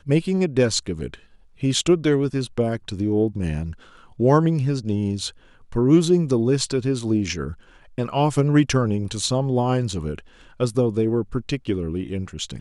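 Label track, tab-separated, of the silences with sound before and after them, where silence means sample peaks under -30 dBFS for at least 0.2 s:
1.140000	1.630000	silence
3.730000	4.200000	silence
5.290000	5.720000	silence
7.530000	7.980000	silence
10.190000	10.600000	silence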